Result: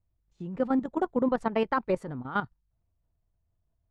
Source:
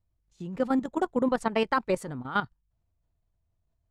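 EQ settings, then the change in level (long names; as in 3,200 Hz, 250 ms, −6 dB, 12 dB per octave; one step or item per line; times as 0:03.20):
low-pass filter 1,600 Hz 6 dB per octave
0.0 dB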